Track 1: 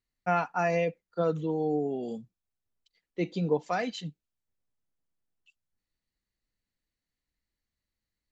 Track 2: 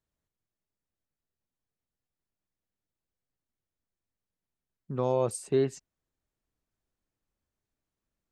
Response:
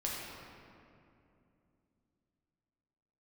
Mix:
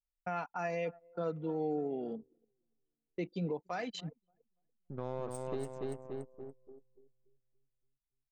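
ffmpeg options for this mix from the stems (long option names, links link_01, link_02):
-filter_complex "[0:a]adynamicequalizer=threshold=0.00562:dfrequency=130:dqfactor=0.85:tfrequency=130:tqfactor=0.85:attack=5:release=100:ratio=0.375:range=2.5:mode=cutabove:tftype=bell,volume=-2.5dB,asplit=2[link_01][link_02];[link_02]volume=-23.5dB[link_03];[1:a]aeval=exprs='if(lt(val(0),0),0.447*val(0),val(0))':channel_layout=same,volume=-6.5dB,asplit=2[link_04][link_05];[link_05]volume=-3.5dB[link_06];[link_03][link_06]amix=inputs=2:normalize=0,aecho=0:1:287|574|861|1148|1435|1722|2009|2296|2583:1|0.57|0.325|0.185|0.106|0.0602|0.0343|0.0195|0.0111[link_07];[link_01][link_04][link_07]amix=inputs=3:normalize=0,anlmdn=0.0631,alimiter=level_in=3dB:limit=-24dB:level=0:latency=1:release=333,volume=-3dB"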